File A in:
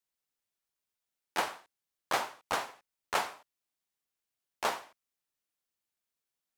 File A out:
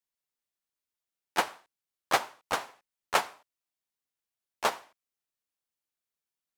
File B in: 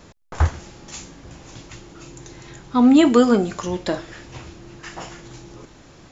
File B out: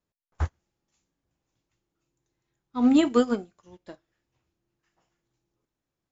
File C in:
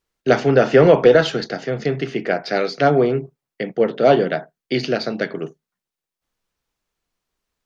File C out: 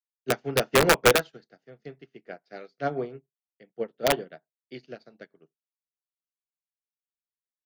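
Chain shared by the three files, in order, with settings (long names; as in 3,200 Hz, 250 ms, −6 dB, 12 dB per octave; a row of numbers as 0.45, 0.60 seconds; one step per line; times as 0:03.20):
wrap-around overflow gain 3 dB
expander for the loud parts 2.5 to 1, over −33 dBFS
normalise the peak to −9 dBFS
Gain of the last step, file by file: +7.0, −5.0, −5.5 decibels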